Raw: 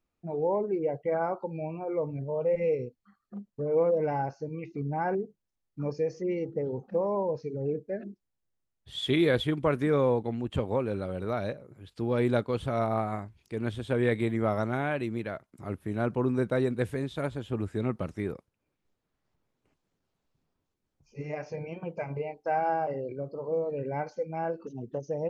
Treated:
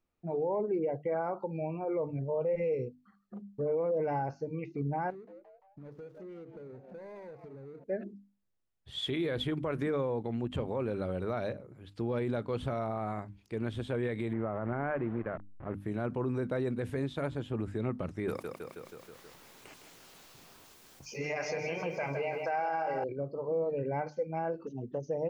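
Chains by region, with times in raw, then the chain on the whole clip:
0:05.10–0:07.84: running median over 41 samples + echo with shifted repeats 172 ms, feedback 44%, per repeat +130 Hz, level −20 dB + downward compressor, threshold −45 dBFS
0:14.33–0:15.74: hold until the input has moved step −38.5 dBFS + low-pass filter 1,900 Hz 24 dB per octave
0:18.28–0:23.04: spectral tilt +3.5 dB per octave + repeating echo 160 ms, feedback 52%, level −9 dB + envelope flattener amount 50%
whole clip: high-shelf EQ 4,900 Hz −6.5 dB; mains-hum notches 50/100/150/200/250/300 Hz; brickwall limiter −24.5 dBFS

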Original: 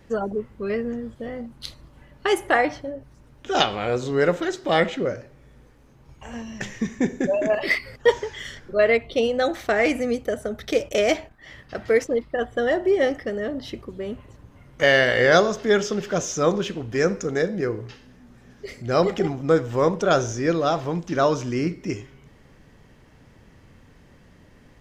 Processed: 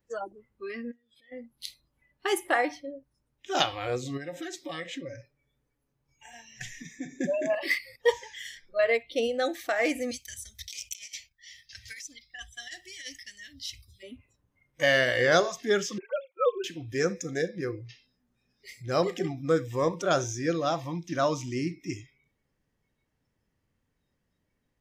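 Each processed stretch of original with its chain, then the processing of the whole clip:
0:00.91–0:01.32: meter weighting curve D + downward compressor 5 to 1, threshold −47 dBFS
0:04.17–0:07.20: comb filter 7 ms, depth 36% + downward compressor 4 to 1, threshold −26 dBFS
0:10.11–0:14.03: drawn EQ curve 100 Hz 0 dB, 470 Hz −25 dB, 760 Hz −17 dB, 5,800 Hz +9 dB, 11,000 Hz +1 dB + compressor whose output falls as the input rises −34 dBFS, ratio −0.5
0:15.98–0:16.64: three sine waves on the formant tracks + noise gate −43 dBFS, range −12 dB
whole clip: high-shelf EQ 8,300 Hz +12 dB; noise reduction from a noise print of the clip's start 20 dB; level −6 dB

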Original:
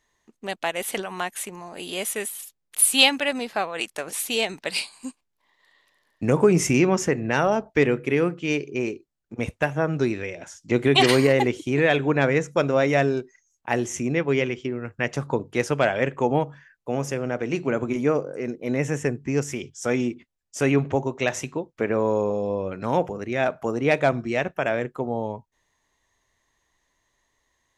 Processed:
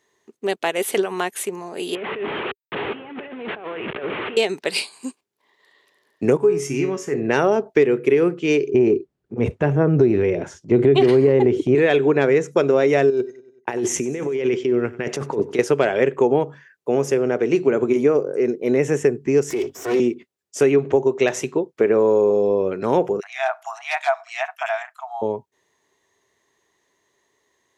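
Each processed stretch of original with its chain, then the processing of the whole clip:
0:01.95–0:04.37: linear delta modulator 16 kbit/s, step −27.5 dBFS + high-pass filter 48 Hz + compressor whose output falls as the input rises −36 dBFS
0:06.37–0:07.14: parametric band 530 Hz −7 dB 0.63 octaves + tuned comb filter 140 Hz, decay 0.37 s, mix 80%
0:08.74–0:11.75: RIAA equalisation playback + transient designer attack −6 dB, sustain +6 dB
0:13.10–0:15.59: downward expander −48 dBFS + compressor whose output falls as the input rises −30 dBFS + repeating echo 95 ms, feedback 54%, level −19 dB
0:19.50–0:20.00: lower of the sound and its delayed copy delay 2.7 ms + transient designer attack −8 dB, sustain +4 dB + multiband upward and downward compressor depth 40%
0:23.20–0:25.22: linear-phase brick-wall high-pass 640 Hz + multiband delay without the direct sound highs, lows 30 ms, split 2,100 Hz
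whole clip: high-pass filter 130 Hz; parametric band 400 Hz +12 dB 0.45 octaves; downward compressor 6 to 1, threshold −15 dBFS; level +3 dB

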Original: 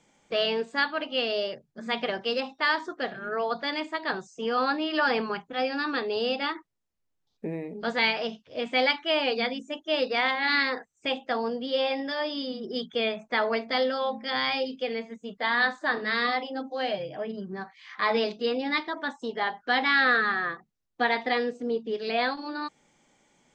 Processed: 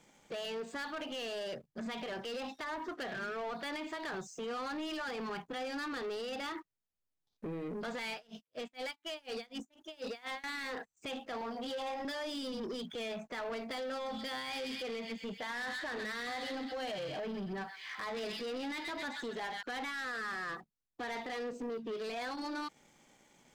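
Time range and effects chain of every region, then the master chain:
0:02.48–0:04.16: high-shelf EQ 3,200 Hz +10.5 dB + treble cut that deepens with the level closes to 910 Hz, closed at −20 dBFS
0:08.13–0:10.44: high-shelf EQ 5,200 Hz +7.5 dB + tremolo with a sine in dB 4.1 Hz, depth 38 dB
0:11.41–0:12.05: flat-topped bell 890 Hz +10 dB 1.3 octaves + mains-hum notches 60/120/180/240/300/360/420 Hz + string-ensemble chorus
0:13.93–0:19.63: notch filter 1,200 Hz, Q 16 + delay with a high-pass on its return 128 ms, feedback 46%, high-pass 2,300 Hz, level −6 dB
whole clip: downward compressor 2.5 to 1, threshold −30 dBFS; brickwall limiter −29.5 dBFS; leveller curve on the samples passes 2; level −5 dB

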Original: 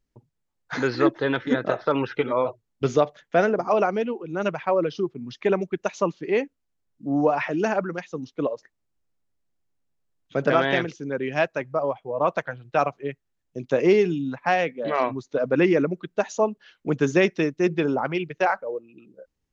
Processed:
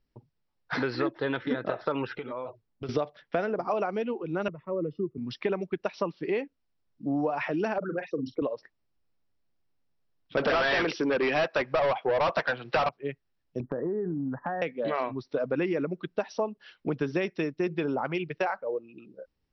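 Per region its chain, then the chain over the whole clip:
0:02.15–0:02.89: downward compressor 3 to 1, threshold −38 dBFS + one half of a high-frequency compander decoder only
0:04.48–0:05.18: moving average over 56 samples + multiband upward and downward expander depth 40%
0:07.78–0:08.42: spectral envelope exaggerated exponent 2 + double-tracking delay 42 ms −11.5 dB + multiband upward and downward compressor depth 70%
0:10.37–0:12.89: high-pass filter 170 Hz + mid-hump overdrive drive 30 dB, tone 3,500 Hz, clips at −6 dBFS
0:13.60–0:14.62: Chebyshev low-pass filter 1,900 Hz, order 10 + low-shelf EQ 460 Hz +8 dB + downward compressor 4 to 1, threshold −30 dBFS
whole clip: Chebyshev low-pass filter 5,700 Hz, order 10; downward compressor 4 to 1, threshold −28 dBFS; level +1.5 dB

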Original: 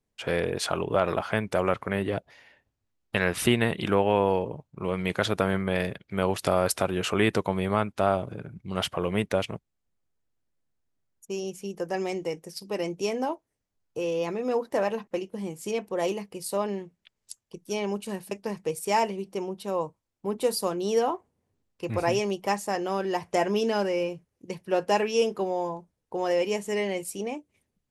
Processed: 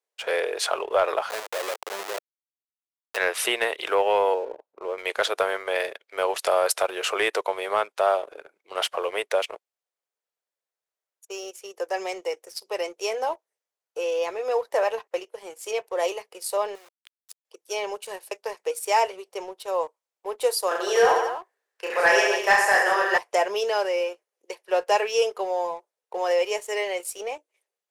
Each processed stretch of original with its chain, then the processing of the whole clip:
0:01.30–0:03.17: mains-hum notches 60/120/180 Hz + comparator with hysteresis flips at −31.5 dBFS
0:04.34–0:04.98: downward compressor 1.5 to 1, threshold −38 dBFS + spectral tilt −4.5 dB per octave
0:16.75–0:17.45: downward compressor 8 to 1, threshold −41 dBFS + bit-depth reduction 8 bits, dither none
0:20.68–0:23.18: parametric band 1,700 Hz +15 dB 0.47 octaves + reverse bouncing-ball delay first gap 30 ms, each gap 1.3×, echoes 5, each echo −2 dB
whole clip: Butterworth high-pass 440 Hz 36 dB per octave; leveller curve on the samples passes 1

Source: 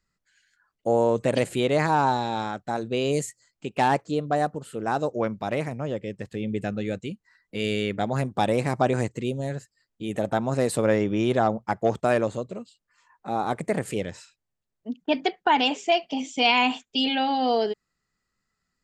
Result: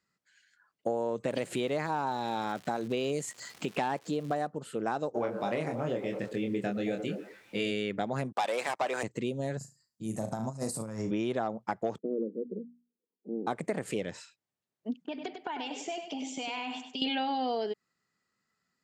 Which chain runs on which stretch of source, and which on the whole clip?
0:01.29–0:04.42: upward compression, threshold −24 dBFS + surface crackle 330 per second −36 dBFS
0:05.14–0:07.70: echo through a band-pass that steps 109 ms, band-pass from 380 Hz, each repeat 0.7 octaves, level −8 dB + background noise pink −63 dBFS + double-tracking delay 25 ms −4 dB
0:08.32–0:09.03: high-pass filter 720 Hz + leveller curve on the samples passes 3 + multiband upward and downward expander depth 40%
0:09.57–0:11.11: drawn EQ curve 150 Hz 0 dB, 220 Hz −6 dB, 440 Hz −15 dB, 1,000 Hz −7 dB, 1,600 Hz −16 dB, 3,500 Hz −18 dB, 4,900 Hz +1 dB, 9,300 Hz +4 dB + flutter between parallel walls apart 6.2 metres, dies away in 0.28 s + compressor whose output falls as the input rises −31 dBFS, ratio −0.5
0:11.98–0:13.47: Chebyshev band-pass filter 180–480 Hz, order 4 + mains-hum notches 60/120/180/240/300 Hz
0:14.95–0:17.02: downward compressor 10 to 1, threshold −33 dBFS + repeating echo 99 ms, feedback 29%, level −7.5 dB
whole clip: high-pass filter 150 Hz 12 dB per octave; high-shelf EQ 9,900 Hz −8 dB; downward compressor, threshold −28 dBFS

